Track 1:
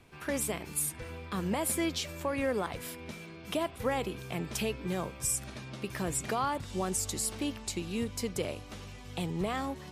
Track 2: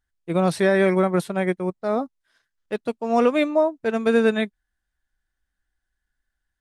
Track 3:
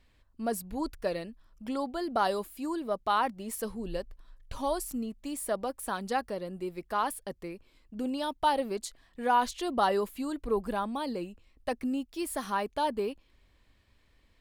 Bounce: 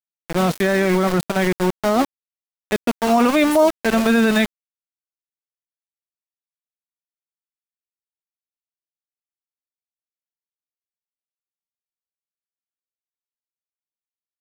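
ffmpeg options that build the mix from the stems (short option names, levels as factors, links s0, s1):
-filter_complex "[1:a]equalizer=f=480:w=3.9:g=-10,dynaudnorm=f=140:g=7:m=6.31,volume=1.12[s0];[2:a]volume=1.12,alimiter=limit=0.0668:level=0:latency=1,volume=1[s1];[s0][s1]amix=inputs=2:normalize=0,aeval=exprs='val(0)*gte(abs(val(0)),0.119)':c=same,alimiter=limit=0.398:level=0:latency=1:release=15"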